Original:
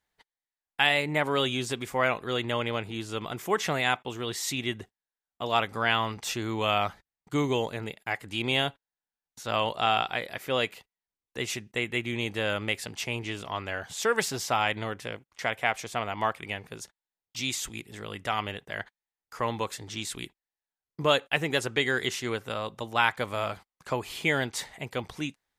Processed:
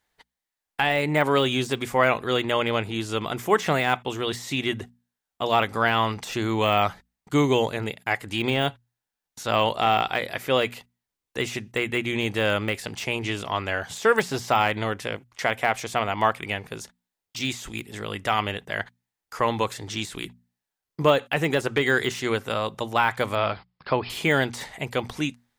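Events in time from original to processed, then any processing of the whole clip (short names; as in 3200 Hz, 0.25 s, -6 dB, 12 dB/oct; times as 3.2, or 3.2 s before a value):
23.35–24.1 brick-wall FIR low-pass 5400 Hz
whole clip: de-esser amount 90%; notches 60/120/180/240 Hz; gain +6.5 dB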